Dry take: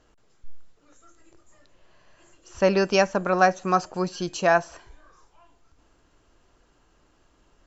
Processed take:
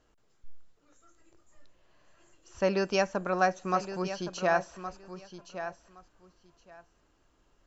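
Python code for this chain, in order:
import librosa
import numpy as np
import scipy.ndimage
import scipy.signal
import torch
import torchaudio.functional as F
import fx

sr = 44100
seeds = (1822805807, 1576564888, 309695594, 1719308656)

y = fx.steep_lowpass(x, sr, hz=6900.0, slope=36, at=(4.02, 4.58))
y = fx.echo_feedback(y, sr, ms=1117, feedback_pct=17, wet_db=-11.0)
y = y * 10.0 ** (-7.0 / 20.0)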